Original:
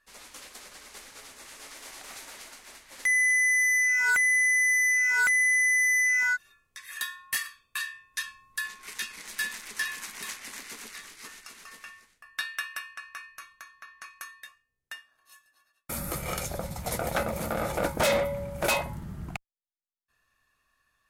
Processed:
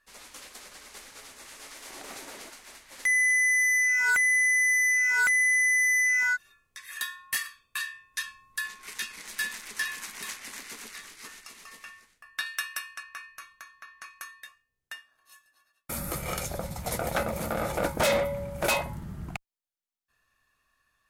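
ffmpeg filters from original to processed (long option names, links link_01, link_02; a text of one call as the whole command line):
ffmpeg -i in.wav -filter_complex "[0:a]asettb=1/sr,asplit=3[link_01][link_02][link_03];[link_01]atrim=end=1.904[link_04];[link_02]atrim=start=1.9:end=2.5,asetpts=PTS-STARTPTS,afade=type=in:duration=0.004:curve=qsin,afade=type=out:start_time=0.596:duration=0.004:curve=qsin,equalizer=frequency=330:width_type=o:width=2.3:gain=9.5[link_05];[link_03]atrim=start=2.496[link_06];[link_04][link_05]acrossfade=duration=0.004:curve1=hsin:curve2=qsin[link_07];[link_07][link_06]acrossfade=duration=0.004:curve1=qsin:curve2=hsin,asettb=1/sr,asplit=3[link_08][link_09][link_10];[link_08]atrim=end=11.444[link_11];[link_09]atrim=start=11.44:end=11.85,asetpts=PTS-STARTPTS,afade=type=in:duration=0.004:curve=qsin,afade=type=out:start_time=0.406:duration=0.004:curve=qsin,bandreject=frequency=1500:width=6.9[link_12];[link_10]atrim=start=11.846[link_13];[link_11][link_12]acrossfade=duration=0.004:curve1=hsin:curve2=qsin[link_14];[link_14][link_13]acrossfade=duration=0.004:curve1=qsin:curve2=hsin,asettb=1/sr,asplit=3[link_15][link_16][link_17];[link_15]atrim=end=12.464[link_18];[link_16]atrim=start=12.46:end=13.03,asetpts=PTS-STARTPTS,afade=type=in:duration=0.004:curve=qsin,afade=type=out:start_time=0.566:duration=0.004:curve=qsin,bass=frequency=250:gain=0,treble=frequency=4000:gain=7[link_19];[link_17]atrim=start=13.026[link_20];[link_18][link_19]acrossfade=duration=0.004:curve1=hsin:curve2=qsin[link_21];[link_21][link_20]acrossfade=duration=0.004:curve1=qsin:curve2=hsin" out.wav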